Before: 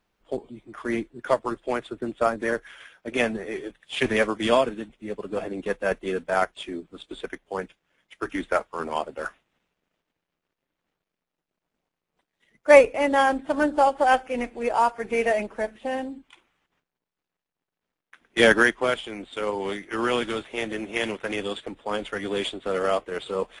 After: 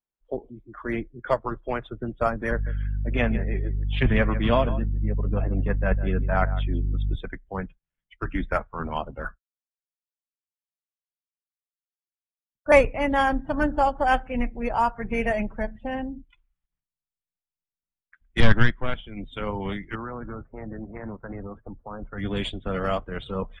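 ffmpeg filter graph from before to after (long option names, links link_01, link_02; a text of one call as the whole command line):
ffmpeg -i in.wav -filter_complex "[0:a]asettb=1/sr,asplit=3[link_01][link_02][link_03];[link_01]atrim=end=2.514[link_04];[link_02]atrim=start=2.51:end=7.16,asetpts=PTS-STARTPTS,afade=type=in:duration=0.004:curve=qsin,afade=type=out:start_time=4.646:duration=0.004:curve=qsin,aemphasis=mode=reproduction:type=50fm,aeval=exprs='val(0)+0.0112*(sin(2*PI*50*n/s)+sin(2*PI*2*50*n/s)/2+sin(2*PI*3*50*n/s)/3+sin(2*PI*4*50*n/s)/4+sin(2*PI*5*50*n/s)/5)':channel_layout=same,aecho=1:1:152:0.2,atrim=end_sample=205065[link_05];[link_03]atrim=start=7.156[link_06];[link_04][link_05]acrossfade=duration=0.004:curve1=hsin:curve2=qsin[link_07];[link_07][link_06]acrossfade=duration=0.004:curve1=qsin:curve2=hsin,asettb=1/sr,asplit=3[link_08][link_09][link_10];[link_08]atrim=end=9.264[link_11];[link_09]atrim=start=9.26:end=12.72,asetpts=PTS-STARTPTS,afade=type=in:duration=0.004:curve=qsin,afade=type=out:start_time=3.456:duration=0.004:curve=qsin,agate=range=-33dB:threshold=-49dB:ratio=3:release=100:detection=peak,asuperstop=centerf=4300:order=20:qfactor=0.54[link_12];[link_10]atrim=start=12.716[link_13];[link_11][link_12]acrossfade=duration=0.004:curve1=hsin:curve2=qsin[link_14];[link_14][link_13]acrossfade=duration=0.004:curve1=qsin:curve2=hsin,asettb=1/sr,asplit=3[link_15][link_16][link_17];[link_15]atrim=end=18.404[link_18];[link_16]atrim=start=18.4:end=19.17,asetpts=PTS-STARTPTS,afade=type=in:duration=0.004:curve=qsin,afade=type=out:start_time=0.766:duration=0.004:curve=qsin,lowpass=frequency=5400:width=0.5412,lowpass=frequency=5400:width=1.3066,aeval=exprs='(tanh(3.55*val(0)+0.8)-tanh(0.8))/3.55':channel_layout=same[link_19];[link_17]atrim=start=19.166[link_20];[link_18][link_19]acrossfade=duration=0.004:curve1=hsin:curve2=qsin[link_21];[link_21][link_20]acrossfade=duration=0.004:curve1=qsin:curve2=hsin,asettb=1/sr,asplit=3[link_22][link_23][link_24];[link_22]atrim=end=19.954[link_25];[link_23]atrim=start=19.95:end=22.18,asetpts=PTS-STARTPTS,afade=type=in:duration=0.004:curve=qsin,afade=type=out:start_time=2.226:duration=0.004:curve=qsin,lowpass=frequency=1400:width=0.5412,lowpass=frequency=1400:width=1.3066,lowshelf=frequency=410:gain=-6.5,acompressor=threshold=-31dB:ratio=2.5:attack=3.2:release=140:knee=1:detection=peak[link_26];[link_24]atrim=start=22.176[link_27];[link_25][link_26]acrossfade=duration=0.004:curve1=hsin:curve2=qsin[link_28];[link_28][link_27]acrossfade=duration=0.004:curve1=qsin:curve2=hsin,asubboost=boost=10.5:cutoff=120,afftdn=noise_reduction=24:noise_floor=-44,highshelf=frequency=5600:gain=-7.5" out.wav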